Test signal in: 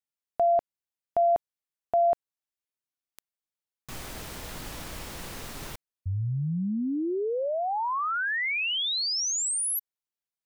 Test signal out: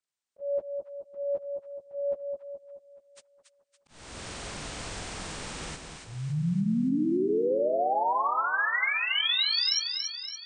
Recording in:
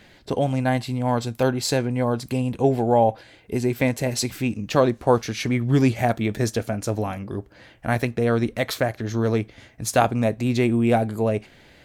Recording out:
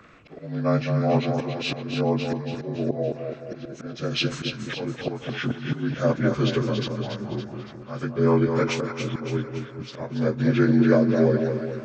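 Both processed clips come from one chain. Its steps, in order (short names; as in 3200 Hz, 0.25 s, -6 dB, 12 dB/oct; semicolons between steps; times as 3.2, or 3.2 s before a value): inharmonic rescaling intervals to 81%; auto swell 0.398 s; split-band echo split 1100 Hz, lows 0.213 s, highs 0.282 s, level -6 dB; gain +2 dB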